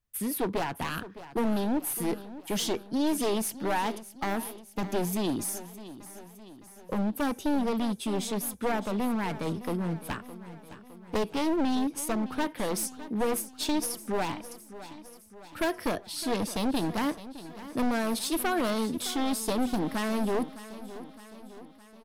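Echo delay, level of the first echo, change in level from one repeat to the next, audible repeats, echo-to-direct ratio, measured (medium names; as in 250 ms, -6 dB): 612 ms, -15.0 dB, -5.0 dB, 4, -13.5 dB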